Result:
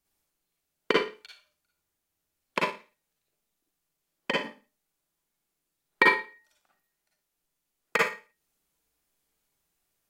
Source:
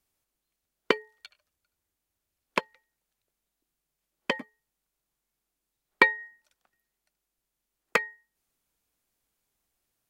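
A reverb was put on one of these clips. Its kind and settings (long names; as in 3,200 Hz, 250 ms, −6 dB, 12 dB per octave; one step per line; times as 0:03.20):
four-comb reverb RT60 0.33 s, DRR −3.5 dB
level −3 dB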